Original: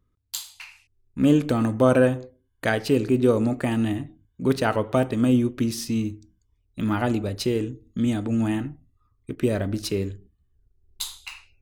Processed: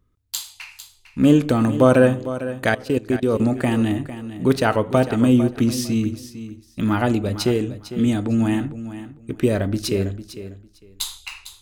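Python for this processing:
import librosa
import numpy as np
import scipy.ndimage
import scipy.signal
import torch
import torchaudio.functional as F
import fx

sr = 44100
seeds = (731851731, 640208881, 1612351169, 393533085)

p1 = fx.level_steps(x, sr, step_db=22, at=(2.69, 3.4))
p2 = p1 + fx.echo_feedback(p1, sr, ms=452, feedback_pct=19, wet_db=-13.0, dry=0)
y = p2 * 10.0 ** (4.0 / 20.0)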